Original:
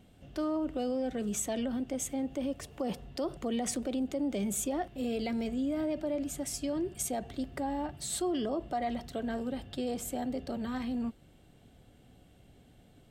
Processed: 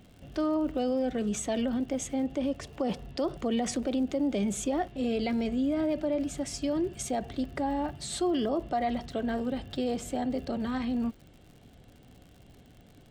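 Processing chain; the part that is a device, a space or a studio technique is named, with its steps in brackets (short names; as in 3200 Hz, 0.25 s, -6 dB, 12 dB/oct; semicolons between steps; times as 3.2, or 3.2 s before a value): lo-fi chain (LPF 6100 Hz 12 dB/oct; wow and flutter 16 cents; crackle 90/s -49 dBFS); gain +4 dB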